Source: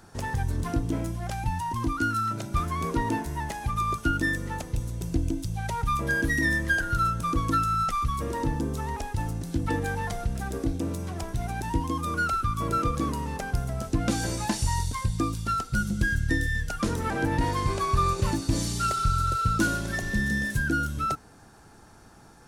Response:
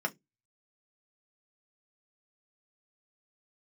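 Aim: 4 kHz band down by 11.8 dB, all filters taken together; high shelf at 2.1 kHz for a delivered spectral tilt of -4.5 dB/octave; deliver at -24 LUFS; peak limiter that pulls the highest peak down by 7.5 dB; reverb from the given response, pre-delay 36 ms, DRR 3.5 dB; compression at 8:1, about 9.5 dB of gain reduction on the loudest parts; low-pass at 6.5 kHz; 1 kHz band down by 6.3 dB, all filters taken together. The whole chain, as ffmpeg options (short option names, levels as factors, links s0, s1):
-filter_complex "[0:a]lowpass=6500,equalizer=f=1000:t=o:g=-6,highshelf=f=2100:g=-6.5,equalizer=f=4000:t=o:g=-7.5,acompressor=threshold=0.0316:ratio=8,alimiter=level_in=1.58:limit=0.0631:level=0:latency=1,volume=0.631,asplit=2[s0][s1];[1:a]atrim=start_sample=2205,adelay=36[s2];[s1][s2]afir=irnorm=-1:irlink=0,volume=0.335[s3];[s0][s3]amix=inputs=2:normalize=0,volume=4.22"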